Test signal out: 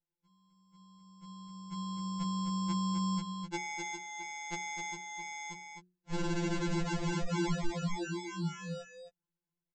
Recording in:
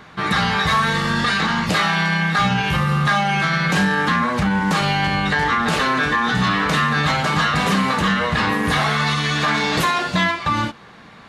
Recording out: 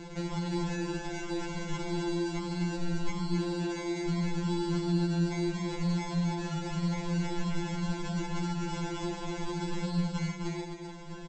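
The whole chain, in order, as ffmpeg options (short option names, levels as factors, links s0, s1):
-filter_complex "[0:a]lowshelf=f=450:t=q:w=1.5:g=-13.5,aresample=16000,acrusher=samples=26:mix=1:aa=0.000001,aresample=44100,acompressor=threshold=0.02:ratio=6,bandreject=f=60:t=h:w=6,bandreject=f=120:t=h:w=6,bandreject=f=180:t=h:w=6,bandreject=f=240:t=h:w=6,bandreject=f=300:t=h:w=6,bandreject=f=360:t=h:w=6,asplit=2[s0][s1];[s1]aecho=0:1:258:0.501[s2];[s0][s2]amix=inputs=2:normalize=0,afftfilt=real='re*2.83*eq(mod(b,8),0)':imag='im*2.83*eq(mod(b,8),0)':win_size=2048:overlap=0.75,volume=1.58"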